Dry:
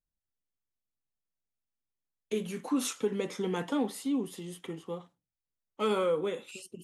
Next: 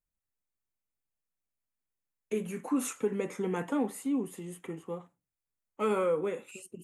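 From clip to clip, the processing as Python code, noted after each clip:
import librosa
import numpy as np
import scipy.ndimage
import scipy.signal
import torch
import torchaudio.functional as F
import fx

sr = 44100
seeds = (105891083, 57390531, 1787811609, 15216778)

y = fx.band_shelf(x, sr, hz=4200.0, db=-11.0, octaves=1.1)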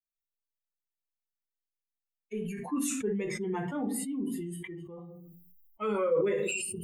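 y = fx.bin_expand(x, sr, power=2.0)
y = fx.room_shoebox(y, sr, seeds[0], volume_m3=140.0, walls='furnished', distance_m=0.98)
y = fx.sustainer(y, sr, db_per_s=23.0)
y = y * librosa.db_to_amplitude(-1.5)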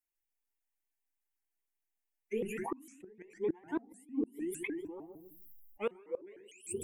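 y = fx.fixed_phaser(x, sr, hz=830.0, stages=8)
y = fx.gate_flip(y, sr, shuts_db=-28.0, range_db=-27)
y = fx.vibrato_shape(y, sr, shape='saw_up', rate_hz=6.6, depth_cents=250.0)
y = y * librosa.db_to_amplitude(4.5)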